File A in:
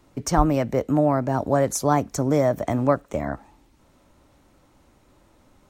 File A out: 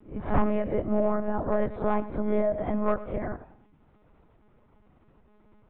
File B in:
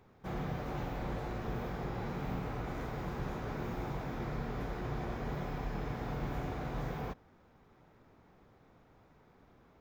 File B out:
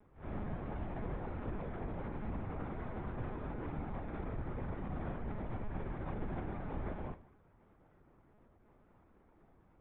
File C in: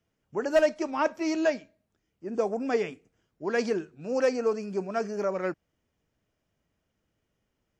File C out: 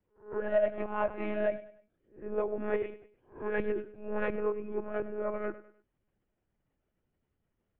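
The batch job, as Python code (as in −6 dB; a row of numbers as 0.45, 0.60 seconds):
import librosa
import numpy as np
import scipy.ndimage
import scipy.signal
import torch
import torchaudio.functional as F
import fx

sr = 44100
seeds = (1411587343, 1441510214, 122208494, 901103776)

y = fx.spec_swells(x, sr, rise_s=0.35)
y = fx.low_shelf(y, sr, hz=84.0, db=4.0)
y = np.clip(y, -10.0 ** (-10.0 / 20.0), 10.0 ** (-10.0 / 20.0))
y = fx.air_absorb(y, sr, metres=420.0)
y = fx.echo_feedback(y, sr, ms=102, feedback_pct=37, wet_db=-16.0)
y = fx.lpc_monotone(y, sr, seeds[0], pitch_hz=210.0, order=16)
y = y * librosa.db_to_amplitude(-4.5)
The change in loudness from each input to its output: −6.0, −3.5, −5.0 LU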